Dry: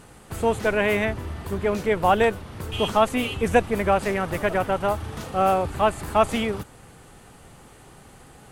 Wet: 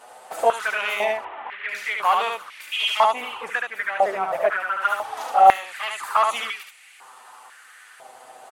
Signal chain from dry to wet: 1.17–1.69 CVSD 16 kbps; 3.06–4.82 high shelf 2100 Hz -10 dB; envelope flanger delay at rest 9.3 ms, full sweep at -18 dBFS; soft clip -14 dBFS, distortion -18 dB; on a send: echo 73 ms -3.5 dB; on the sum: stepped high-pass 2 Hz 680–2300 Hz; gain +3 dB

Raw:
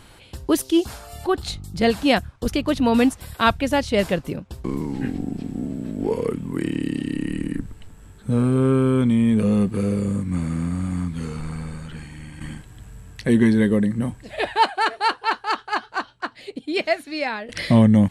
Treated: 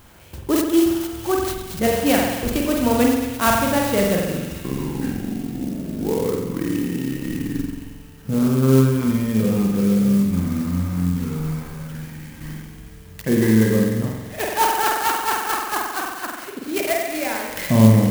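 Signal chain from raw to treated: bell 6300 Hz +13 dB 0.24 oct; on a send: thin delay 0.227 s, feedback 73%, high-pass 3300 Hz, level -6 dB; on the sum: spring tank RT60 1.1 s, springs 45 ms, chirp 65 ms, DRR -1 dB; clock jitter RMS 0.054 ms; gain -2 dB

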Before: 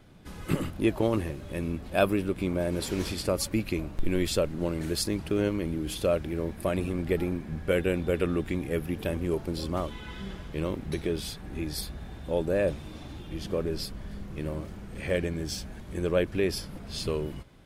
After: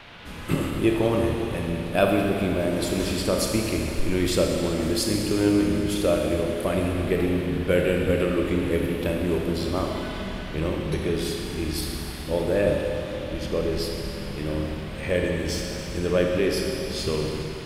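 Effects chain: band noise 420–3500 Hz -50 dBFS; Schroeder reverb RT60 2.8 s, combs from 26 ms, DRR 0.5 dB; gain +2.5 dB

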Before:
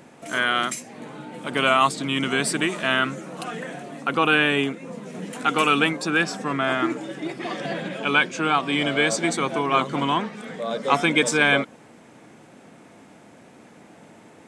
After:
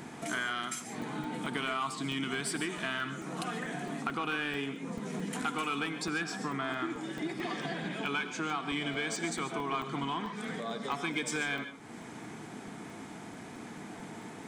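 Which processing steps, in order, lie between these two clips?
in parallel at -4 dB: soft clip -18.5 dBFS, distortion -9 dB; on the sum: compressor 4:1, threshold -34 dBFS, peak gain reduction 18.5 dB; bell 550 Hz -13.5 dB 0.26 oct; notch 2700 Hz, Q 15; non-linear reverb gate 0.17 s rising, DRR 9.5 dB; crackling interface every 0.22 s, samples 64, zero, from 0.8

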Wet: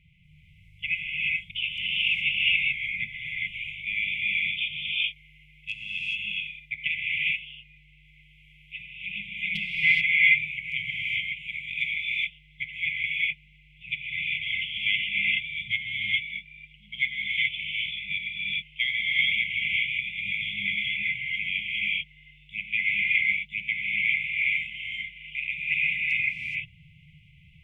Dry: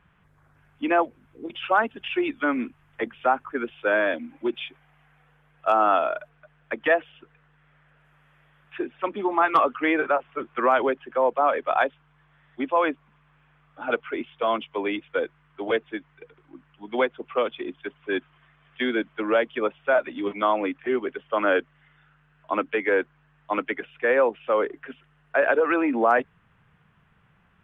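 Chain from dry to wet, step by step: brick-wall FIR band-stop 180–2000 Hz; tone controls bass -5 dB, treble -12 dB; non-linear reverb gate 0.45 s rising, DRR -5 dB; gain +8.5 dB

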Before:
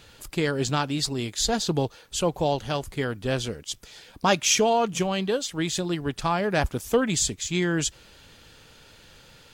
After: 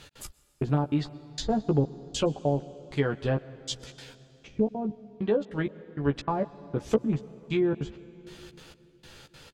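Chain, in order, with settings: rattling part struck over -24 dBFS, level -13 dBFS; treble ducked by the level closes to 300 Hz, closed at -18 dBFS; step gate "x.xx....xx" 196 bpm -60 dB; doubler 14 ms -5 dB; on a send: reverb RT60 3.4 s, pre-delay 0.108 s, DRR 18 dB

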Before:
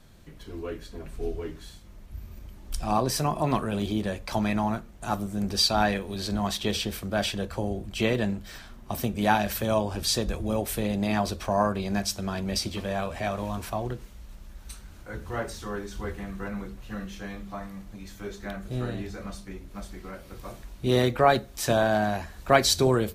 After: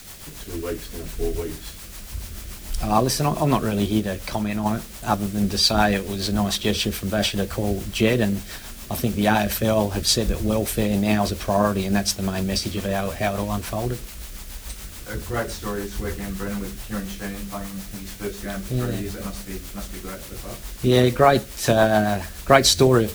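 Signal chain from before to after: in parallel at -5.5 dB: requantised 6-bit, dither triangular; on the sum: rotary speaker horn 7 Hz; 3.99–4.66 compressor, threshold -25 dBFS, peak gain reduction 6 dB; gain +4 dB

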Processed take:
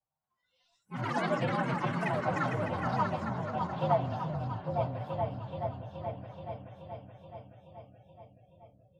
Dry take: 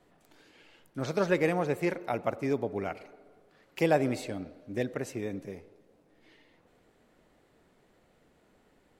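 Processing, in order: inharmonic rescaling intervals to 112%; EQ curve 140 Hz 0 dB, 300 Hz -18 dB, 820 Hz +4 dB, 1300 Hz 0 dB, 2100 Hz -12 dB, 3600 Hz -8 dB, 8300 Hz -30 dB; on a send: repeats that get brighter 0.427 s, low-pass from 200 Hz, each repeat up 2 oct, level 0 dB; on the sum: spectral noise reduction 23 dB; notch comb 420 Hz; echoes that change speed 0.226 s, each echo +6 st, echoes 3; gain +1.5 dB

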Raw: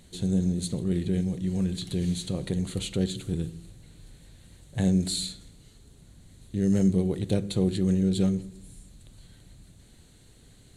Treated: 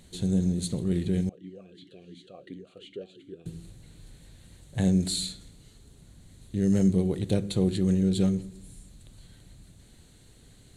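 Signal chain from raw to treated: 1.29–3.46 vowel sweep a-i 2.8 Hz

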